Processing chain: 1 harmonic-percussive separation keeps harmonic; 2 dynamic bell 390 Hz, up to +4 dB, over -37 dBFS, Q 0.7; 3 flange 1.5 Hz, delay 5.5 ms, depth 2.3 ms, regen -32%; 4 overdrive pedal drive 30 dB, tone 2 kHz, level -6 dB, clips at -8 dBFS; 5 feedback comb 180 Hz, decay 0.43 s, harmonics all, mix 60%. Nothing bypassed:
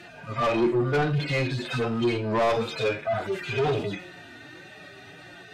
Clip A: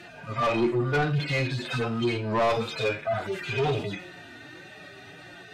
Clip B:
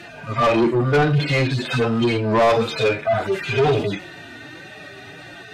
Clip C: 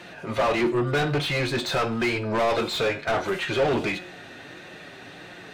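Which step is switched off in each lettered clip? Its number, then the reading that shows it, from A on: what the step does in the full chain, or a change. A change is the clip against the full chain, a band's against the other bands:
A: 2, 500 Hz band -2.0 dB; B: 5, loudness change +6.5 LU; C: 1, 8 kHz band +6.0 dB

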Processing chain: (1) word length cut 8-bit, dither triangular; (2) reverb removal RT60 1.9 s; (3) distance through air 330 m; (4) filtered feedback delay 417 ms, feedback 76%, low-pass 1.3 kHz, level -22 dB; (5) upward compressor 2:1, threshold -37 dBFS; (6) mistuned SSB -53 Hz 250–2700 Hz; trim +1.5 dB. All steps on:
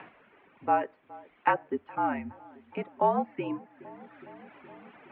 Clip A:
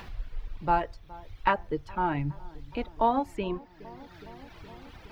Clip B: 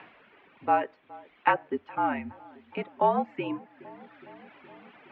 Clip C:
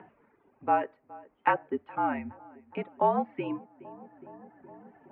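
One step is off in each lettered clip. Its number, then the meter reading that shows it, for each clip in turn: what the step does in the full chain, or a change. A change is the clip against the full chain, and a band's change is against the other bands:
6, 125 Hz band +9.0 dB; 3, 2 kHz band +2.0 dB; 1, distortion -17 dB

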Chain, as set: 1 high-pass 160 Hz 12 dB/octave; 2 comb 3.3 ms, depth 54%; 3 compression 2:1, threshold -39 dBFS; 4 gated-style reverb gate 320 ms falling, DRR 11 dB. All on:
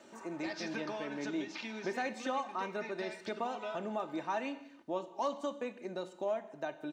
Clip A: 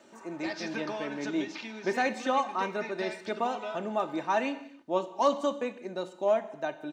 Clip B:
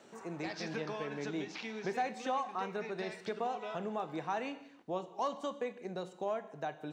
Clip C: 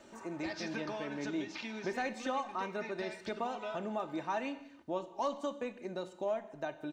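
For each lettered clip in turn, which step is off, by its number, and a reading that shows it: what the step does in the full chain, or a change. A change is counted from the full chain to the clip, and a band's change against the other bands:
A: 3, mean gain reduction 5.0 dB; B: 2, 125 Hz band +6.0 dB; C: 1, 125 Hz band +2.5 dB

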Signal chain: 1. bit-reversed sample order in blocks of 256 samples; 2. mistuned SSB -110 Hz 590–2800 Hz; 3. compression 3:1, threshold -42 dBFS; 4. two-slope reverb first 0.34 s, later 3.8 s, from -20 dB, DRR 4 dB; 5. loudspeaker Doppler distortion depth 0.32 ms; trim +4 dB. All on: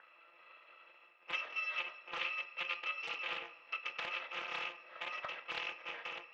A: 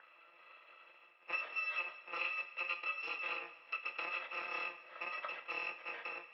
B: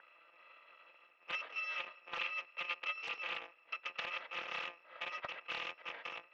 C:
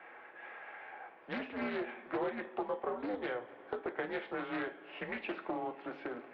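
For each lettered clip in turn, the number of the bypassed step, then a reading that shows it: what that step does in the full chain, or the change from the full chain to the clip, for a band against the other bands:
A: 5, 4 kHz band -7.0 dB; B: 4, loudness change -1.5 LU; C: 1, 250 Hz band +23.5 dB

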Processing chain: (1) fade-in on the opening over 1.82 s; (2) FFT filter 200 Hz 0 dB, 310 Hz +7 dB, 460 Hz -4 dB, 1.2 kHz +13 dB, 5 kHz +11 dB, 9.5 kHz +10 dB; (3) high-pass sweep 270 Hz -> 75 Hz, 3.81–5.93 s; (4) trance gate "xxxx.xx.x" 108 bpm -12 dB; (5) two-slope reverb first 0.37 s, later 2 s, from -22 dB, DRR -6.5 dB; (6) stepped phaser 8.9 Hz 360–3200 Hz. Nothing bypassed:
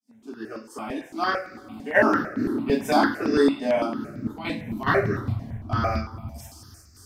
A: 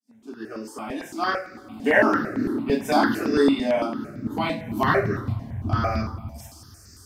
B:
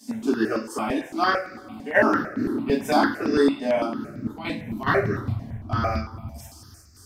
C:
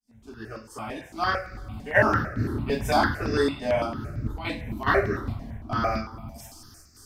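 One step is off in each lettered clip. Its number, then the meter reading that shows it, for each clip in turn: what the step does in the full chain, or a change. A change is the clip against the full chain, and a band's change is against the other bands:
4, momentary loudness spread change -1 LU; 1, momentary loudness spread change -3 LU; 3, crest factor change +1.5 dB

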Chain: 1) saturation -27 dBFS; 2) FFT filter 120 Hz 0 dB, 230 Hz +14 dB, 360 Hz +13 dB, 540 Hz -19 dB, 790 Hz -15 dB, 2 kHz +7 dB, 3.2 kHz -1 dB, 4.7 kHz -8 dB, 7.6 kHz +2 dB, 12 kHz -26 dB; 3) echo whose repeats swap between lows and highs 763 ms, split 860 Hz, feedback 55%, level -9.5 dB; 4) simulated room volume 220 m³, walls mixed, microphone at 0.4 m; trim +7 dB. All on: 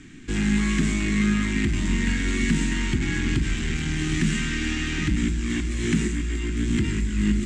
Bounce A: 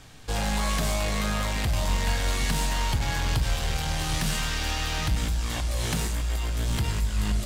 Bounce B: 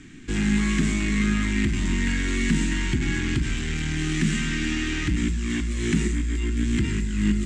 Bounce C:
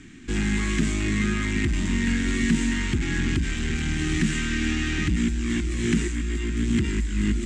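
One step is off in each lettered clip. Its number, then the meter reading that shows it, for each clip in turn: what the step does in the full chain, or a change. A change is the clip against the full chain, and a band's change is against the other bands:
2, loudness change -3.0 LU; 3, echo-to-direct -7.0 dB to -8.5 dB; 4, echo-to-direct -7.0 dB to -12.5 dB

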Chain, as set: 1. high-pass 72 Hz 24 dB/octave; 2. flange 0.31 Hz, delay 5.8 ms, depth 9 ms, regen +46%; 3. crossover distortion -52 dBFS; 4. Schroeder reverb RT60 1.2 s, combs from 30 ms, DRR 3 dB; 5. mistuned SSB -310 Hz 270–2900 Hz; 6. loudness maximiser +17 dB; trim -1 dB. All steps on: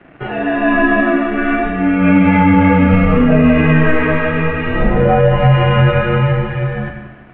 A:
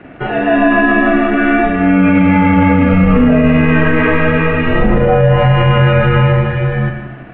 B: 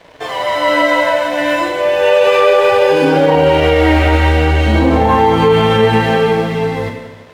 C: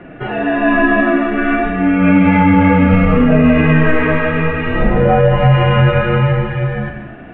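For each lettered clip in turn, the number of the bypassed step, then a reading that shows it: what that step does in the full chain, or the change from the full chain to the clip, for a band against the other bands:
2, crest factor change -1.5 dB; 5, 500 Hz band +7.5 dB; 3, distortion -29 dB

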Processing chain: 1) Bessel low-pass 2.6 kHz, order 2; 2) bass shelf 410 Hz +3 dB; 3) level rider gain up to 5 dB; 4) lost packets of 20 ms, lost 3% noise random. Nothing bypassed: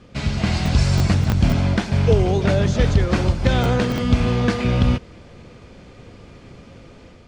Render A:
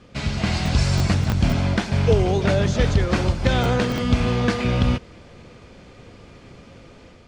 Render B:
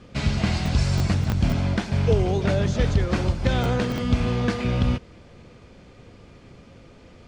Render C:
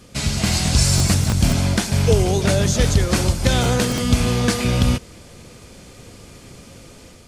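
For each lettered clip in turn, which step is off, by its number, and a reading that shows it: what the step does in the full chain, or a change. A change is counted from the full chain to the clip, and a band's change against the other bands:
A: 2, loudness change -2.0 LU; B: 3, loudness change -4.0 LU; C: 1, 8 kHz band +14.5 dB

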